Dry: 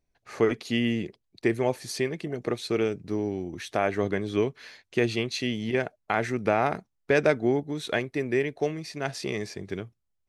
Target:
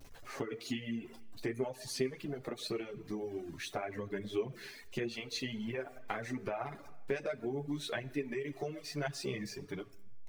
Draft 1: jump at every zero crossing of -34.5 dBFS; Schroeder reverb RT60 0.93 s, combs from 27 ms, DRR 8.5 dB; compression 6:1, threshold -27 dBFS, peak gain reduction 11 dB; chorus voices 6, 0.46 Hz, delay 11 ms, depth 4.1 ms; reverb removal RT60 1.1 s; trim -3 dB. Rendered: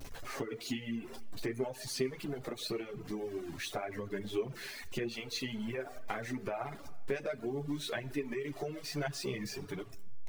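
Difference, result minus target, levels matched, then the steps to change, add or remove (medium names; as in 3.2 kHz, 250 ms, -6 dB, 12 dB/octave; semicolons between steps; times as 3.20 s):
jump at every zero crossing: distortion +8 dB
change: jump at every zero crossing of -43 dBFS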